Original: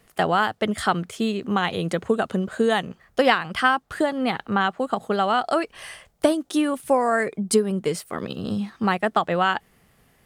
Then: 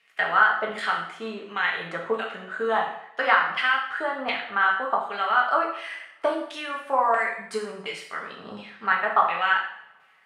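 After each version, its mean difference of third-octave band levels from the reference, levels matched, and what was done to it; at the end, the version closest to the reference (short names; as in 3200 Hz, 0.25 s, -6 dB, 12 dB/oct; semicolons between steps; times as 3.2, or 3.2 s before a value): 9.0 dB: LFO band-pass saw down 1.4 Hz 930–2600 Hz; two-slope reverb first 0.65 s, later 2.1 s, from -27 dB, DRR -1.5 dB; gain +3 dB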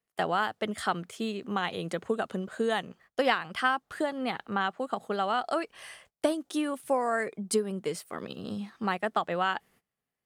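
1.0 dB: gate -50 dBFS, range -21 dB; low shelf 110 Hz -11.5 dB; gain -7 dB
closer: second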